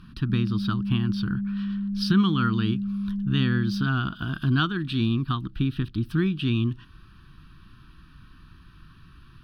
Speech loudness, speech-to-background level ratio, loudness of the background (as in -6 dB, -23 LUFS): -26.5 LUFS, 3.0 dB, -29.5 LUFS